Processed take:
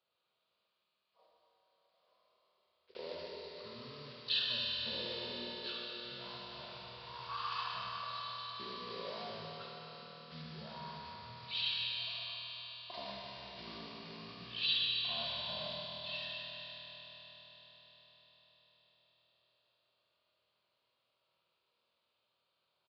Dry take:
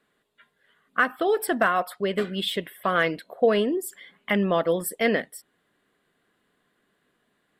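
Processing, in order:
one scale factor per block 5 bits
downsampling to 32,000 Hz
in parallel at −1.5 dB: compressor whose output falls as the input rises −30 dBFS
on the sum: first difference
tuned comb filter 120 Hz, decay 1.9 s, mix 90%
convolution reverb RT60 0.95 s, pre-delay 21 ms, DRR 0 dB
change of speed 0.332×
level +3.5 dB

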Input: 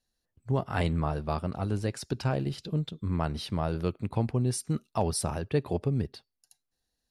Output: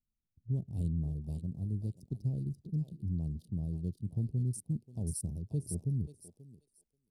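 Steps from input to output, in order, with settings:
adaptive Wiener filter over 41 samples
Chebyshev band-stop filter 200–9,800 Hz, order 2
dynamic equaliser 260 Hz, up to −3 dB, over −46 dBFS, Q 2.2
feedback echo with a high-pass in the loop 534 ms, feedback 26%, high-pass 1,200 Hz, level −3.5 dB
level −3 dB

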